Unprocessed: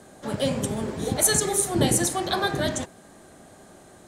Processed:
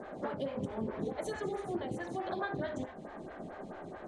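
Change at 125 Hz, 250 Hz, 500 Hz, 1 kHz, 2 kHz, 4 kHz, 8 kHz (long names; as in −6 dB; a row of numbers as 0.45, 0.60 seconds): −14.5, −11.0, −9.5, −10.0, −12.0, −23.0, −34.0 decibels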